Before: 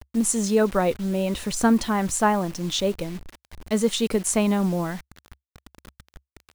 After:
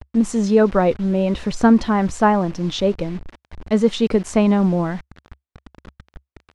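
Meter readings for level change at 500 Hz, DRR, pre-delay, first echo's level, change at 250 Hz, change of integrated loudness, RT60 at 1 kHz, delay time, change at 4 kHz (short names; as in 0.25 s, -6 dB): +5.5 dB, none, none, none, +6.0 dB, +5.0 dB, none, none, -1.0 dB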